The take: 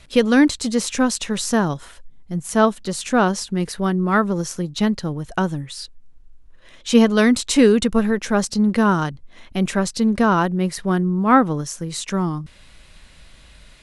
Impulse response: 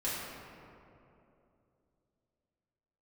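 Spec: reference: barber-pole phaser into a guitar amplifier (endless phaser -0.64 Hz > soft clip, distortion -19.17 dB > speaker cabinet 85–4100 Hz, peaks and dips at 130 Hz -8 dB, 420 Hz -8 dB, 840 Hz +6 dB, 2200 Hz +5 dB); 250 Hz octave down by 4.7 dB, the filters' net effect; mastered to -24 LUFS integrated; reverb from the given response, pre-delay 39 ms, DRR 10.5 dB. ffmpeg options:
-filter_complex "[0:a]equalizer=f=250:t=o:g=-4.5,asplit=2[a][b];[1:a]atrim=start_sample=2205,adelay=39[c];[b][c]afir=irnorm=-1:irlink=0,volume=-16.5dB[d];[a][d]amix=inputs=2:normalize=0,asplit=2[e][f];[f]afreqshift=-0.64[g];[e][g]amix=inputs=2:normalize=1,asoftclip=threshold=-10.5dB,highpass=85,equalizer=f=130:t=q:w=4:g=-8,equalizer=f=420:t=q:w=4:g=-8,equalizer=f=840:t=q:w=4:g=6,equalizer=f=2.2k:t=q:w=4:g=5,lowpass=f=4.1k:w=0.5412,lowpass=f=4.1k:w=1.3066,volume=1.5dB"

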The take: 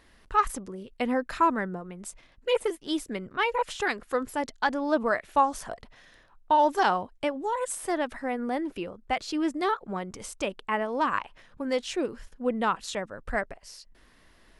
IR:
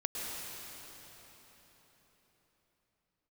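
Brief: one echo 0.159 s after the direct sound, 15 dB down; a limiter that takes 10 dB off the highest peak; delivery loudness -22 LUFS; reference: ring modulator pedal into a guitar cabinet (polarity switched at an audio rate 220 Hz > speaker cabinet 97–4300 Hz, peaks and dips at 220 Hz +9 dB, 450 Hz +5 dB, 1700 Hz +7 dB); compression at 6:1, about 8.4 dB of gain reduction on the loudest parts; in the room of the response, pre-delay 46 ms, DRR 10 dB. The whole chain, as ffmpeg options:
-filter_complex "[0:a]acompressor=threshold=-26dB:ratio=6,alimiter=level_in=1dB:limit=-24dB:level=0:latency=1,volume=-1dB,aecho=1:1:159:0.178,asplit=2[a][b];[1:a]atrim=start_sample=2205,adelay=46[c];[b][c]afir=irnorm=-1:irlink=0,volume=-14dB[d];[a][d]amix=inputs=2:normalize=0,aeval=exprs='val(0)*sgn(sin(2*PI*220*n/s))':c=same,highpass=97,equalizer=f=220:t=q:w=4:g=9,equalizer=f=450:t=q:w=4:g=5,equalizer=f=1.7k:t=q:w=4:g=7,lowpass=f=4.3k:w=0.5412,lowpass=f=4.3k:w=1.3066,volume=11.5dB"

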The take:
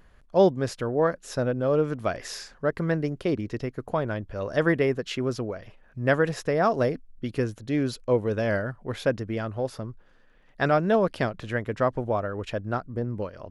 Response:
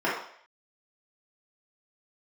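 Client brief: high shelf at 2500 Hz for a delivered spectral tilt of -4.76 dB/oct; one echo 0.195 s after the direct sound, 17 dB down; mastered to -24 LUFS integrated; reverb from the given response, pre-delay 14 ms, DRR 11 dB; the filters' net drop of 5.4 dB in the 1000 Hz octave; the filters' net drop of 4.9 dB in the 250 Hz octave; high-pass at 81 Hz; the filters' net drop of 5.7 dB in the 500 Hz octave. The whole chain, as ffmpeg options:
-filter_complex "[0:a]highpass=81,equalizer=f=250:t=o:g=-5,equalizer=f=500:t=o:g=-4,equalizer=f=1k:t=o:g=-7.5,highshelf=f=2.5k:g=8,aecho=1:1:195:0.141,asplit=2[a][b];[1:a]atrim=start_sample=2205,adelay=14[c];[b][c]afir=irnorm=-1:irlink=0,volume=-25.5dB[d];[a][d]amix=inputs=2:normalize=0,volume=6.5dB"

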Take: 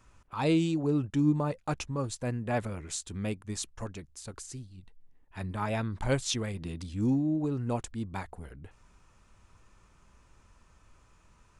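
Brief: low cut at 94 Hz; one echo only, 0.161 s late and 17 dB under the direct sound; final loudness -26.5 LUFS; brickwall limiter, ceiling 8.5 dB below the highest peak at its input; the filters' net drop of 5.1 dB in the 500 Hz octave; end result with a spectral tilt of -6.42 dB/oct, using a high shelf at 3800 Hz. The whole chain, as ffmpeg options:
-af "highpass=94,equalizer=f=500:t=o:g=-6.5,highshelf=f=3.8k:g=-7.5,alimiter=level_in=2.5dB:limit=-24dB:level=0:latency=1,volume=-2.5dB,aecho=1:1:161:0.141,volume=10.5dB"

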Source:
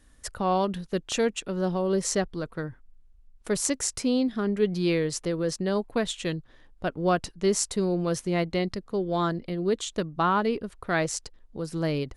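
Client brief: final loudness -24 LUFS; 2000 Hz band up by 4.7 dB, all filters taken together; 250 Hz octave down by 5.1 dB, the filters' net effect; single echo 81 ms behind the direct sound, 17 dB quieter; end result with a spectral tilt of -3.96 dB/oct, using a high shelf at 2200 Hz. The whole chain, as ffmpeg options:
-af "equalizer=f=250:t=o:g=-8,equalizer=f=2k:t=o:g=8,highshelf=f=2.2k:g=-3.5,aecho=1:1:81:0.141,volume=5dB"

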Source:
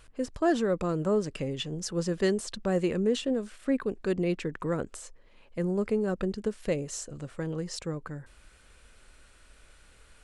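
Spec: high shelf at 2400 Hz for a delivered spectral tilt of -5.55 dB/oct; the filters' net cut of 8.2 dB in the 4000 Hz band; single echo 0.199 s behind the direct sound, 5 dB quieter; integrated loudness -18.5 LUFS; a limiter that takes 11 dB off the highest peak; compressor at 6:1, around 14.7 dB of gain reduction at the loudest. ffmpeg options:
-af "highshelf=f=2.4k:g=-6,equalizer=f=4k:t=o:g=-5.5,acompressor=threshold=-38dB:ratio=6,alimiter=level_in=13.5dB:limit=-24dB:level=0:latency=1,volume=-13.5dB,aecho=1:1:199:0.562,volume=27dB"

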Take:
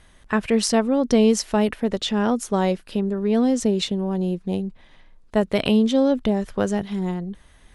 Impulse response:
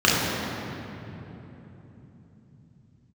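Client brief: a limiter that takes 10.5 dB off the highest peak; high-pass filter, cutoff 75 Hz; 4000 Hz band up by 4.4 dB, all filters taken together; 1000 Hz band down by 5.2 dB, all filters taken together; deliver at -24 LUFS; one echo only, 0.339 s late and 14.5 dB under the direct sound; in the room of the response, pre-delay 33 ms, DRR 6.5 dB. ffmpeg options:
-filter_complex "[0:a]highpass=75,equalizer=f=1k:t=o:g=-7.5,equalizer=f=4k:t=o:g=6,alimiter=limit=-13.5dB:level=0:latency=1,aecho=1:1:339:0.188,asplit=2[a][b];[1:a]atrim=start_sample=2205,adelay=33[c];[b][c]afir=irnorm=-1:irlink=0,volume=-28.5dB[d];[a][d]amix=inputs=2:normalize=0,volume=-2.5dB"

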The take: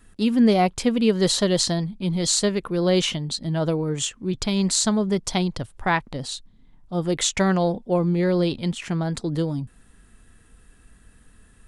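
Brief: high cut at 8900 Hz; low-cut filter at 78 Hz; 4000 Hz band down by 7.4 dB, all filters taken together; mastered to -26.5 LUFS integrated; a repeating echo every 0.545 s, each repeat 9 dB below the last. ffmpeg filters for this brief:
-af "highpass=78,lowpass=8.9k,equalizer=f=4k:t=o:g=-9,aecho=1:1:545|1090|1635|2180:0.355|0.124|0.0435|0.0152,volume=-3.5dB"

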